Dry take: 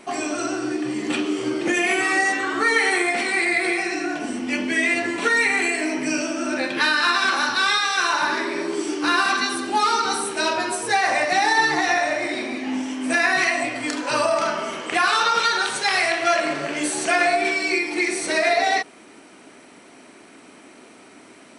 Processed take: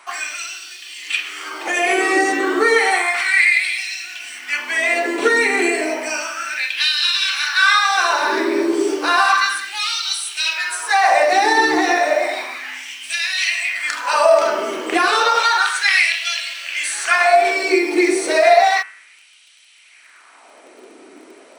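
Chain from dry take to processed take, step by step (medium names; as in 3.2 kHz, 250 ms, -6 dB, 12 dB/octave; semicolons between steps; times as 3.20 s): in parallel at -11 dB: word length cut 6-bit, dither none; on the sum: bass shelf 190 Hz +5 dB; de-hum 101.9 Hz, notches 32; LFO high-pass sine 0.32 Hz 340–3200 Hz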